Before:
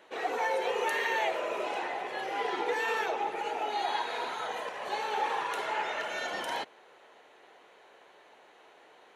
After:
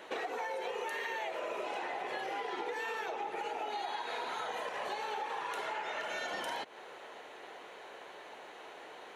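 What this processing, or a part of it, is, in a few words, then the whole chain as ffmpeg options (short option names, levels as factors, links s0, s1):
serial compression, leveller first: -af "acompressor=threshold=0.0141:ratio=2,acompressor=threshold=0.00708:ratio=6,volume=2.37"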